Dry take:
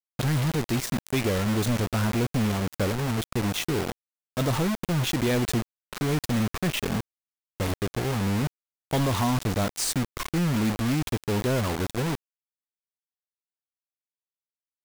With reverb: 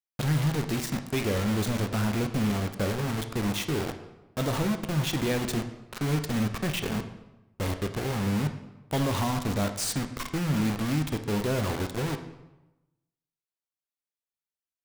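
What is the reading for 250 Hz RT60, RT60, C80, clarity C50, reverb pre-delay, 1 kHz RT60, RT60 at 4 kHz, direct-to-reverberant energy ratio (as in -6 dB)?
1.1 s, 1.0 s, 12.0 dB, 10.0 dB, 9 ms, 1.0 s, 0.75 s, 6.5 dB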